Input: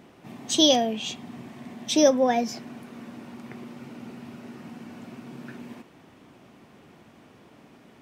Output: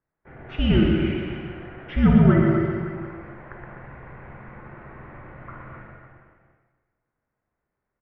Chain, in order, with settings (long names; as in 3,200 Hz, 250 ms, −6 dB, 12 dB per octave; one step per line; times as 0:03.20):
noise gate −45 dBFS, range −32 dB
spectral tilt +3 dB per octave
reverse bouncing-ball delay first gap 120 ms, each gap 1.1×, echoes 5
convolution reverb RT60 1.2 s, pre-delay 39 ms, DRR 2.5 dB
single-sideband voice off tune −370 Hz 230–2,200 Hz
level +3.5 dB